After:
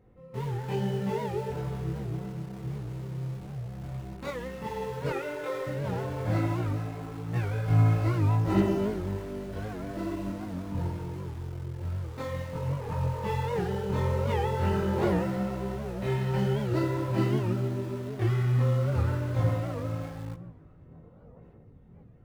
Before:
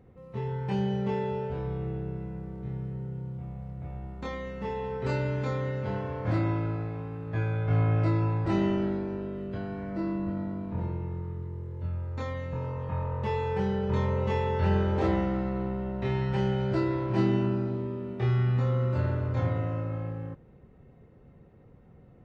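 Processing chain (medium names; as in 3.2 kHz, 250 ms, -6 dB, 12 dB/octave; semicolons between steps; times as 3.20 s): 5.10–5.67 s: brick-wall FIR band-pass 300–4000 Hz; 21.03–21.38 s: time-frequency box 440–1500 Hz +9 dB; in parallel at -10 dB: bit crusher 6-bit; on the sum: filtered feedback delay 497 ms, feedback 51%, low-pass 1.7 kHz, level -23 dB; on a send at -13 dB: reverberation RT60 2.3 s, pre-delay 5 ms; on the sum: chorus voices 6, 0.97 Hz, delay 21 ms, depth 4.1 ms; warped record 78 rpm, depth 160 cents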